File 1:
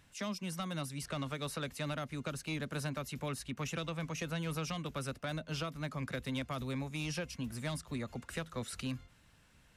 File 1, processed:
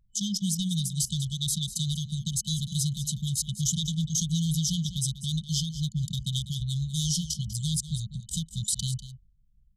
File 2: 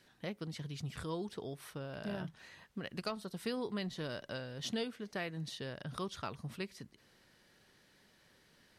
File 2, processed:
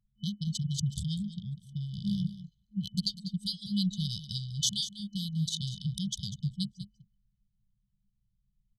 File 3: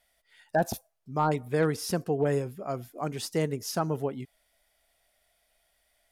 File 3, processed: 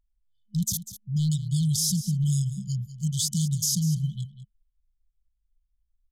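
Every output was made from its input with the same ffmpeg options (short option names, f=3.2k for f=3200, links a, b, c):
-filter_complex "[0:a]superequalizer=9b=3.16:12b=3.98:15b=2,anlmdn=0.158,afftfilt=real='re*(1-between(b*sr/4096,210,3000))':imag='im*(1-between(b*sr/4096,210,3000))':win_size=4096:overlap=0.75,alimiter=level_in=7.5dB:limit=-24dB:level=0:latency=1:release=104,volume=-7.5dB,acontrast=38,asplit=2[a][b];[b]aecho=0:1:196:0.211[c];[a][c]amix=inputs=2:normalize=0,adynamicequalizer=threshold=0.002:dfrequency=3200:dqfactor=0.7:tfrequency=3200:tqfactor=0.7:attack=5:release=100:ratio=0.375:range=2:mode=boostabove:tftype=highshelf,volume=6.5dB"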